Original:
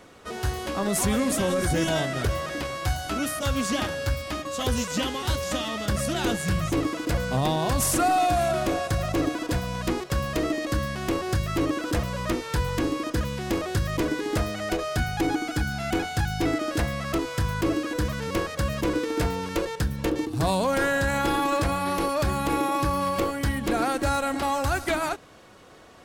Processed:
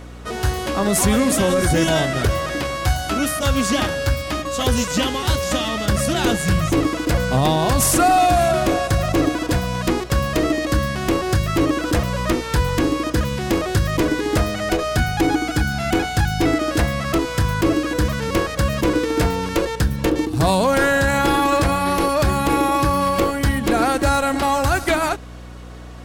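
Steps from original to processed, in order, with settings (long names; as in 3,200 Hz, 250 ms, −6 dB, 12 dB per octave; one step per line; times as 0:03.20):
mains hum 60 Hz, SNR 18 dB
level +7 dB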